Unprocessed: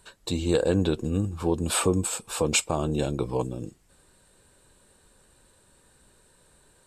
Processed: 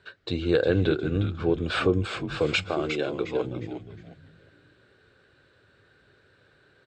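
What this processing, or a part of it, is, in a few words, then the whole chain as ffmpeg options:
frequency-shifting delay pedal into a guitar cabinet: -filter_complex "[0:a]asettb=1/sr,asplit=3[a][b][c];[a]atrim=end=2.634[d];[b]atrim=start=2.63:end=3.45,asetpts=PTS-STARTPTS,afade=t=in:d=0.004:c=qsin,afade=t=out:st=0.816:d=0.004:c=qsin,highpass=280[e];[c]atrim=start=3.446[f];[d][e]acrossfade=d=0.004:c1=hsin:c2=qsin[g];[g][f]acrossfade=d=0.004:c1=qsin:c2=hsin,asplit=5[h][i][j][k][l];[i]adelay=358,afreqshift=-140,volume=-8dB[m];[j]adelay=716,afreqshift=-280,volume=-17.9dB[n];[k]adelay=1074,afreqshift=-420,volume=-27.8dB[o];[l]adelay=1432,afreqshift=-560,volume=-37.7dB[p];[h][m][n][o][p]amix=inputs=5:normalize=0,highpass=93,equalizer=f=100:t=q:w=4:g=6,equalizer=f=210:t=q:w=4:g=-7,equalizer=f=400:t=q:w=4:g=4,equalizer=f=930:t=q:w=4:g=-10,equalizer=f=1.5k:t=q:w=4:g=9,equalizer=f=2.1k:t=q:w=4:g=3,lowpass=f=4.3k:w=0.5412,lowpass=f=4.3k:w=1.3066"

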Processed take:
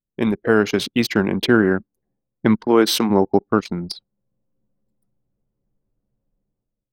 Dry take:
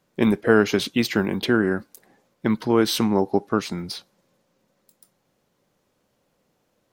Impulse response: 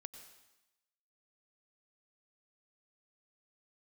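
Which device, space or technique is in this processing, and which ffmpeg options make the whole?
voice memo with heavy noise removal: -filter_complex "[0:a]asplit=3[a][b][c];[a]afade=t=out:st=2.64:d=0.02[d];[b]highpass=230,afade=t=in:st=2.64:d=0.02,afade=t=out:st=3.09:d=0.02[e];[c]afade=t=in:st=3.09:d=0.02[f];[d][e][f]amix=inputs=3:normalize=0,anlmdn=39.8,dynaudnorm=f=160:g=7:m=16dB,volume=-1dB"

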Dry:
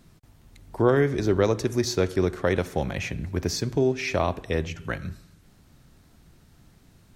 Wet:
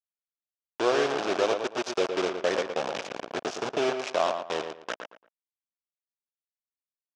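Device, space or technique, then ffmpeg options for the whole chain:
hand-held game console: -filter_complex "[0:a]asettb=1/sr,asplit=3[a][b][c];[a]atrim=end=1.934[d];[b]atrim=start=1.93:end=3.82,asetpts=PTS-STARTPTS,afade=t=in:d=0.004:c=qsin,afade=t=out:st=1.886:d=0.004:c=qsin,equalizer=f=125:t=o:w=1:g=4,equalizer=f=500:t=o:w=1:g=4,equalizer=f=1k:t=o:w=1:g=-11,equalizer=f=2k:t=o:w=1:g=6,equalizer=f=4k:t=o:w=1:g=-10,equalizer=f=8k:t=o:w=1:g=8[e];[c]atrim=start=3.816[f];[d][e]acrossfade=d=0.004:c1=hsin:c2=qsin[g];[g][f]acrossfade=d=0.004:c1=qsin:c2=hsin,acrusher=bits=3:mix=0:aa=0.000001,highpass=450,equalizer=f=660:t=q:w=4:g=5,equalizer=f=2k:t=q:w=4:g=-7,equalizer=f=4.3k:t=q:w=4:g=-5,lowpass=f=5.7k:w=0.5412,lowpass=f=5.7k:w=1.3066,asplit=2[h][i];[i]adelay=114,lowpass=f=2.9k:p=1,volume=-6.5dB,asplit=2[j][k];[k]adelay=114,lowpass=f=2.9k:p=1,volume=0.26,asplit=2[l][m];[m]adelay=114,lowpass=f=2.9k:p=1,volume=0.26[n];[h][j][l][n]amix=inputs=4:normalize=0,volume=-2dB"

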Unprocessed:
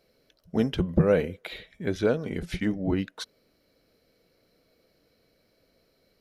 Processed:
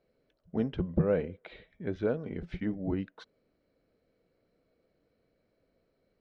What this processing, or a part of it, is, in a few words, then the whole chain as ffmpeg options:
phone in a pocket: -af "lowpass=3.8k,highshelf=f=2.2k:g=-10,volume=-5.5dB"

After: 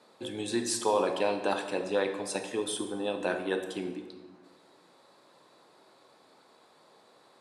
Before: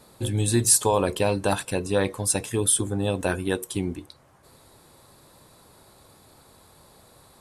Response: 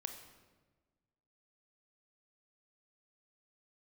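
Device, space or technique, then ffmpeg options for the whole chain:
supermarket ceiling speaker: -filter_complex "[0:a]highpass=120,highpass=280,lowpass=5k[a];[1:a]atrim=start_sample=2205[b];[a][b]afir=irnorm=-1:irlink=0,volume=-1.5dB"

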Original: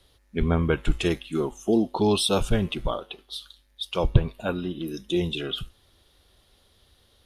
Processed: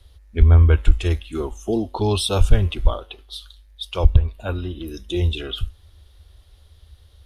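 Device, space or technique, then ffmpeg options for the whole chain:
car stereo with a boomy subwoofer: -af "lowshelf=f=110:t=q:w=3:g=11,alimiter=limit=-2.5dB:level=0:latency=1:release=416,volume=1dB"

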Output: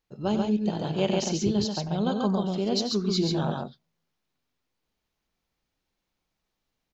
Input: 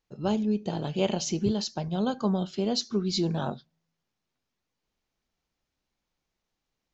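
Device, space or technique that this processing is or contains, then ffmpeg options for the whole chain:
exciter from parts: -filter_complex "[0:a]asplit=2[a][b];[b]highpass=f=4.3k:w=0.5412,highpass=f=4.3k:w=1.3066,asoftclip=type=tanh:threshold=-26.5dB,highpass=4.3k,volume=-13dB[c];[a][c]amix=inputs=2:normalize=0,aecho=1:1:93.29|137:0.282|0.708"

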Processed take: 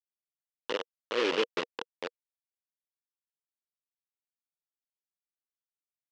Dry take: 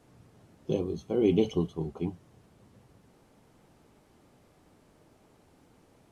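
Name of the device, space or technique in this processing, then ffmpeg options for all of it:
hand-held game console: -af "acrusher=bits=3:mix=0:aa=0.000001,highpass=470,equalizer=f=480:t=q:w=4:g=9,equalizer=f=720:t=q:w=4:g=-8,equalizer=f=2.9k:t=q:w=4:g=8,lowpass=f=5.2k:w=0.5412,lowpass=f=5.2k:w=1.3066,volume=-3.5dB"

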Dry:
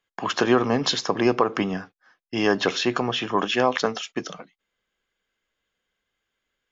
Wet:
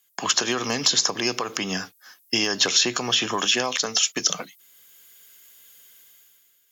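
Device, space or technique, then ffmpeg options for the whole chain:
FM broadcast chain: -filter_complex "[0:a]highpass=62,dynaudnorm=f=100:g=13:m=13.5dB,acrossover=split=91|1800[a][b][c];[a]acompressor=threshold=-52dB:ratio=4[d];[b]acompressor=threshold=-24dB:ratio=4[e];[c]acompressor=threshold=-31dB:ratio=4[f];[d][e][f]amix=inputs=3:normalize=0,aemphasis=mode=production:type=75fm,alimiter=limit=-13dB:level=0:latency=1:release=128,asoftclip=type=hard:threshold=-13.5dB,lowpass=f=15k:w=0.5412,lowpass=f=15k:w=1.3066,aemphasis=mode=production:type=75fm"

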